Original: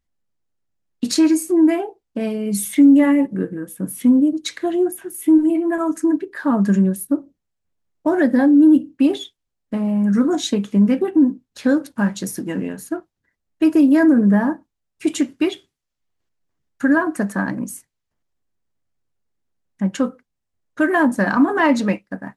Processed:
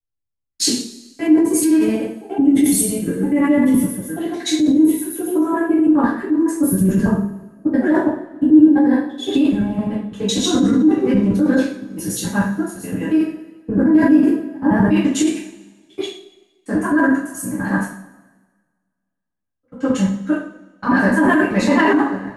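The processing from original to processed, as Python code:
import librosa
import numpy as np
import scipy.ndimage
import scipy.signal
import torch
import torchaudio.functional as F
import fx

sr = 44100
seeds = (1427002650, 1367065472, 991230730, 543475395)

p1 = fx.block_reorder(x, sr, ms=85.0, group=7)
p2 = fx.rev_double_slope(p1, sr, seeds[0], early_s=0.54, late_s=2.2, knee_db=-18, drr_db=-9.0)
p3 = fx.over_compress(p2, sr, threshold_db=-7.0, ratio=-0.5)
p4 = p2 + (p3 * librosa.db_to_amplitude(0.5))
p5 = fx.band_widen(p4, sr, depth_pct=40)
y = p5 * librosa.db_to_amplitude(-13.5)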